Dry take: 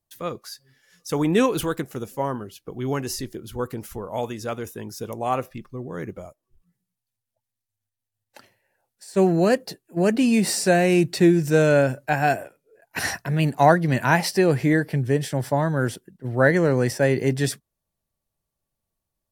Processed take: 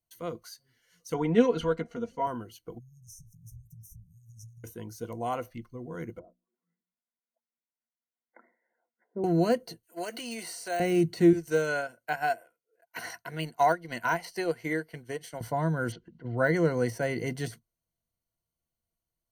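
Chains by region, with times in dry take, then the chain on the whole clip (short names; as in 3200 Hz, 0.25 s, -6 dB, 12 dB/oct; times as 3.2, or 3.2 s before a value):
1.14–2.27 air absorption 140 m + comb 4.3 ms, depth 75%
2.78–4.64 compressor 16:1, threshold -33 dBFS + brick-wall FIR band-stop 190–5200 Hz + high shelf 5100 Hz -4.5 dB
6.19–9.24 treble ducked by the level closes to 420 Hz, closed at -41 dBFS + brick-wall FIR band-pass 180–2200 Hz + notches 60/120/180/240/300 Hz
9.83–10.8 HPF 610 Hz + high shelf 2300 Hz +10 dB + compressor 1.5:1, threshold -24 dBFS
11.33–15.41 HPF 640 Hz 6 dB/oct + transient shaper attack +3 dB, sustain -9 dB
15.92–16.38 LPF 4600 Hz 24 dB/oct + upward compressor, threshold -36 dBFS
whole clip: de-esser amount 70%; ripple EQ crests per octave 1.9, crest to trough 11 dB; gain -8 dB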